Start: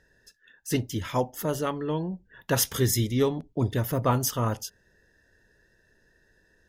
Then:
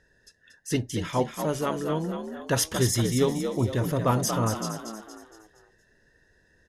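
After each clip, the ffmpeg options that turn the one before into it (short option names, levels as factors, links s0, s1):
-filter_complex "[0:a]lowpass=f=11000:w=0.5412,lowpass=f=11000:w=1.3066,asplit=2[s0][s1];[s1]asplit=5[s2][s3][s4][s5][s6];[s2]adelay=233,afreqshift=53,volume=0.447[s7];[s3]adelay=466,afreqshift=106,volume=0.202[s8];[s4]adelay=699,afreqshift=159,volume=0.0902[s9];[s5]adelay=932,afreqshift=212,volume=0.0407[s10];[s6]adelay=1165,afreqshift=265,volume=0.0184[s11];[s7][s8][s9][s10][s11]amix=inputs=5:normalize=0[s12];[s0][s12]amix=inputs=2:normalize=0"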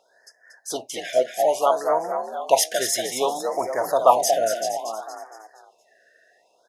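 -af "acontrast=82,highpass=f=700:t=q:w=4.9,afftfilt=real='re*(1-between(b*sr/1024,970*pow(3400/970,0.5+0.5*sin(2*PI*0.61*pts/sr))/1.41,970*pow(3400/970,0.5+0.5*sin(2*PI*0.61*pts/sr))*1.41))':imag='im*(1-between(b*sr/1024,970*pow(3400/970,0.5+0.5*sin(2*PI*0.61*pts/sr))/1.41,970*pow(3400/970,0.5+0.5*sin(2*PI*0.61*pts/sr))*1.41))':win_size=1024:overlap=0.75,volume=0.75"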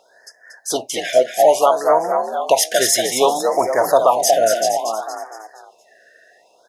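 -af "alimiter=limit=0.299:level=0:latency=1:release=254,volume=2.51"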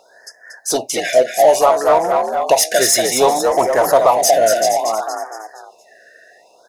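-filter_complex "[0:a]bandreject=f=3200:w=5,asplit=2[s0][s1];[s1]volume=10,asoftclip=hard,volume=0.1,volume=0.708[s2];[s0][s2]amix=inputs=2:normalize=0"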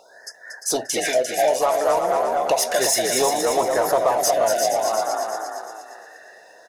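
-af "acompressor=threshold=0.0708:ratio=2,aecho=1:1:349|698|1047|1396:0.473|0.132|0.0371|0.0104"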